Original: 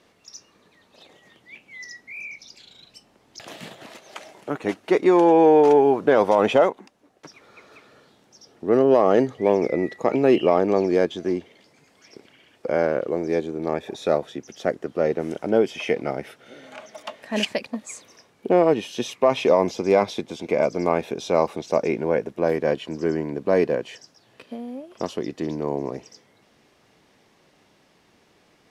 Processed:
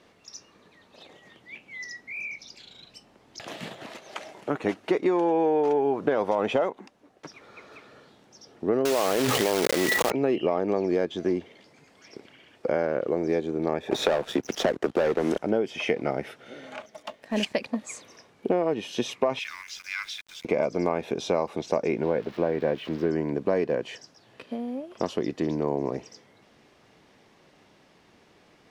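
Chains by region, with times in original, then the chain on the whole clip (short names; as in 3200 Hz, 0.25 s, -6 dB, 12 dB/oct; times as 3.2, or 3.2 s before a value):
8.85–10.12 block floating point 3-bit + tilt +2 dB/oct + fast leveller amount 100%
13.91–15.39 low shelf 110 Hz -11.5 dB + sample leveller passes 3 + three-band squash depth 40%
16.82–17.54 G.711 law mismatch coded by A + bell 1600 Hz -4.5 dB 3 oct
19.39–20.45 steep high-pass 1400 Hz 48 dB/oct + sample gate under -46.5 dBFS
22.03–23.11 switching spikes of -22.5 dBFS + air absorption 320 m
whole clip: high shelf 6700 Hz -7 dB; compressor, threshold -22 dBFS; gain +1.5 dB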